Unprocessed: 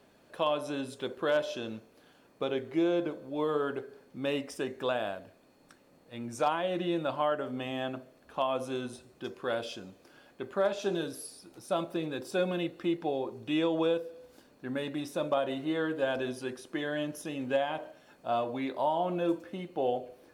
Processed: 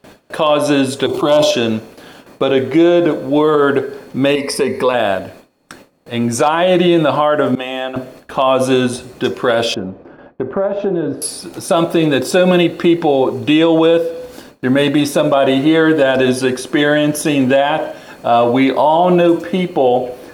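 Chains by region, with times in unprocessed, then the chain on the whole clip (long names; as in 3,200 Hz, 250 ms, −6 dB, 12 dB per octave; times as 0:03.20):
0:01.06–0:01.51: phaser with its sweep stopped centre 330 Hz, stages 8 + level that may fall only so fast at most 28 dB per second
0:04.35–0:04.94: EQ curve with evenly spaced ripples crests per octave 0.89, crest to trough 13 dB + downward compressor 2 to 1, threshold −39 dBFS
0:07.55–0:07.96: high-pass filter 370 Hz + downward expander −37 dBFS + downward compressor 2.5 to 1, threshold −43 dBFS
0:09.74–0:11.22: Bessel low-pass filter 880 Hz + downward compressor 4 to 1, threshold −37 dBFS
whole clip: noise gate with hold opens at −50 dBFS; boost into a limiter +25.5 dB; level −2.5 dB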